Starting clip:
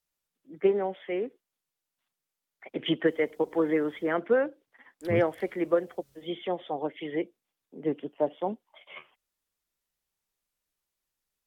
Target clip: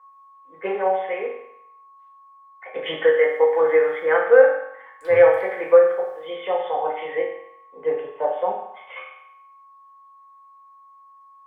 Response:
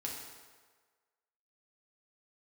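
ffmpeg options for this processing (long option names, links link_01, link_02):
-filter_complex "[0:a]aeval=exprs='val(0)+0.00112*sin(2*PI*1100*n/s)':channel_layout=same,equalizer=frequency=125:width_type=o:width=1:gain=-5,equalizer=frequency=250:width_type=o:width=1:gain=-11,equalizer=frequency=500:width_type=o:width=1:gain=9,equalizer=frequency=1000:width_type=o:width=1:gain=11,equalizer=frequency=2000:width_type=o:width=1:gain=11[link_01];[1:a]atrim=start_sample=2205,asetrate=79380,aresample=44100[link_02];[link_01][link_02]afir=irnorm=-1:irlink=0,volume=2.5dB"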